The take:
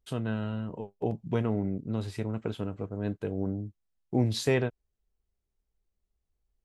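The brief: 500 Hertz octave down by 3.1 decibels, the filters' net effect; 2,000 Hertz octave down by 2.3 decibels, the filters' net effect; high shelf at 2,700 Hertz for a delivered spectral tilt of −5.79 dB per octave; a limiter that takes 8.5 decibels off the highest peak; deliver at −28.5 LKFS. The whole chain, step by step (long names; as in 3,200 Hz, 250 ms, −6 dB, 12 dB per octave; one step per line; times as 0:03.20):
parametric band 500 Hz −4 dB
parametric band 2,000 Hz −6 dB
high-shelf EQ 2,700 Hz +7.5 dB
level +7 dB
brickwall limiter −16 dBFS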